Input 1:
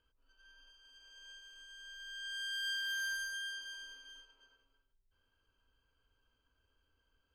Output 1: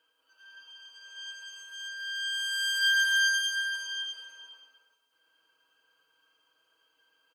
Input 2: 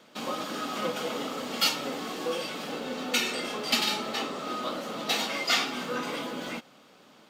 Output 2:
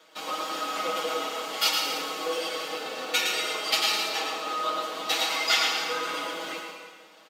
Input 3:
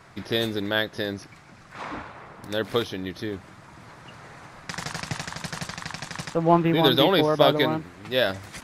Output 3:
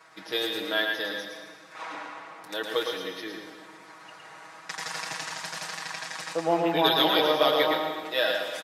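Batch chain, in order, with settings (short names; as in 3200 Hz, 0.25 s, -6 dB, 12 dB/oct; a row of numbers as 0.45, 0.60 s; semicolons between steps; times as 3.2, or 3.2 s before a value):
Bessel high-pass 540 Hz, order 2; comb 6.3 ms, depth 92%; on a send: echo 0.111 s -5 dB; on the sum: plate-style reverb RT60 1.4 s, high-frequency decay 0.9×, pre-delay 0.105 s, DRR 6 dB; match loudness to -27 LUFS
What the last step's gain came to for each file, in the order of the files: +5.5, -1.5, -4.5 dB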